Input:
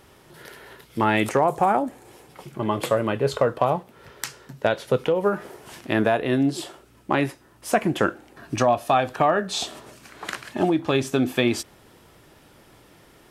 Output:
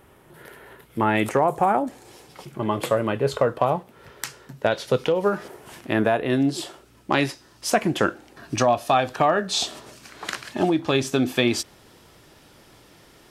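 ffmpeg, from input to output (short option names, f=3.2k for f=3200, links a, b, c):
-af "asetnsamples=n=441:p=0,asendcmd='1.15 equalizer g -4;1.87 equalizer g 7;2.45 equalizer g -1;4.72 equalizer g 7.5;5.48 equalizer g -3;6.3 equalizer g 3;7.12 equalizer g 13;7.7 equalizer g 5',equalizer=f=5k:t=o:w=1.3:g=-10"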